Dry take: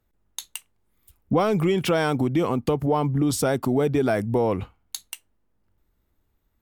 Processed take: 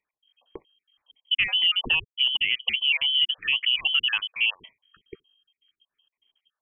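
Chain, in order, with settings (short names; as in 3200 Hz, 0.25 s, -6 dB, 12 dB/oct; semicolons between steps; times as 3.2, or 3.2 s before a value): random spectral dropouts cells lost 53%; inverted band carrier 3200 Hz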